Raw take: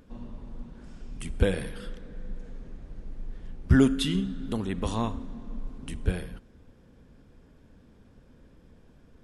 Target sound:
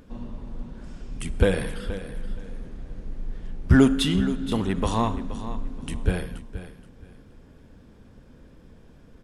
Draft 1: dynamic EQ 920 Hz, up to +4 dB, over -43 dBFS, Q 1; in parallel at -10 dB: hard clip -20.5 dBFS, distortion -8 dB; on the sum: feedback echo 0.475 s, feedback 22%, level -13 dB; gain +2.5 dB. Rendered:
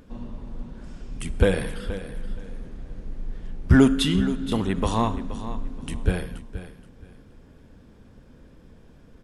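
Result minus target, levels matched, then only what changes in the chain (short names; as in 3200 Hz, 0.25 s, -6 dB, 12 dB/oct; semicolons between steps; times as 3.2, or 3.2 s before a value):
hard clip: distortion -5 dB
change: hard clip -28 dBFS, distortion -3 dB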